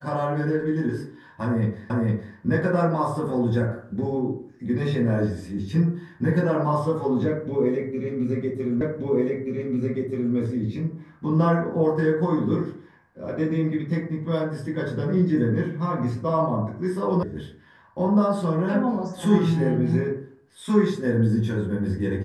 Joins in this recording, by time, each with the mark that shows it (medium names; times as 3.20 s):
1.90 s: repeat of the last 0.46 s
8.81 s: repeat of the last 1.53 s
17.23 s: sound stops dead